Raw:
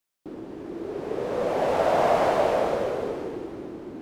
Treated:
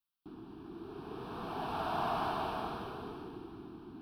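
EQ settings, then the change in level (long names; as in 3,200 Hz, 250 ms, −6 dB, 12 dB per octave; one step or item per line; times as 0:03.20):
notch filter 580 Hz, Q 12
phaser with its sweep stopped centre 2,000 Hz, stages 6
−6.5 dB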